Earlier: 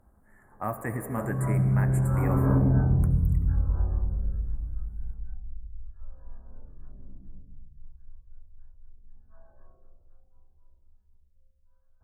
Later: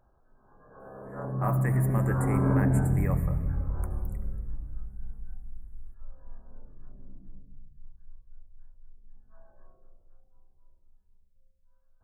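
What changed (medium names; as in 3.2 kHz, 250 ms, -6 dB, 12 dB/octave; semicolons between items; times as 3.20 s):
speech: entry +0.80 s; master: add peaking EQ 63 Hz -8 dB 1.2 oct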